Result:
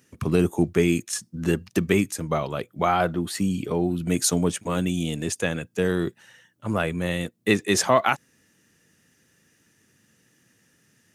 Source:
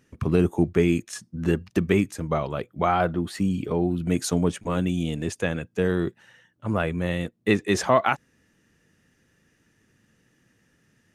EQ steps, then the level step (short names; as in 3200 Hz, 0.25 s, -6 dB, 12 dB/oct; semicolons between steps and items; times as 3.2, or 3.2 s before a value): HPF 86 Hz; high shelf 4400 Hz +11 dB; 0.0 dB